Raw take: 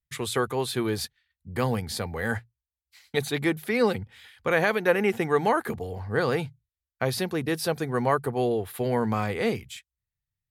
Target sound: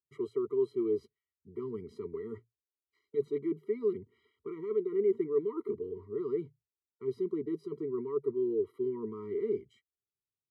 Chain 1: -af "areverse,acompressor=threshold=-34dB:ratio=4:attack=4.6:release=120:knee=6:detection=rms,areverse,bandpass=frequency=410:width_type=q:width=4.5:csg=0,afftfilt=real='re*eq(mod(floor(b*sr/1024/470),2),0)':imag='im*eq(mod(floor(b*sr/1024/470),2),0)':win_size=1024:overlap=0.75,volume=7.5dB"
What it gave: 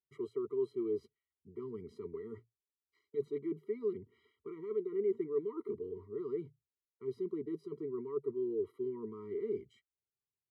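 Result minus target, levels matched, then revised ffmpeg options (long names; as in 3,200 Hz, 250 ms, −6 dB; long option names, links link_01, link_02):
downward compressor: peak gain reduction +5 dB
-af "areverse,acompressor=threshold=-27.5dB:ratio=4:attack=4.6:release=120:knee=6:detection=rms,areverse,bandpass=frequency=410:width_type=q:width=4.5:csg=0,afftfilt=real='re*eq(mod(floor(b*sr/1024/470),2),0)':imag='im*eq(mod(floor(b*sr/1024/470),2),0)':win_size=1024:overlap=0.75,volume=7.5dB"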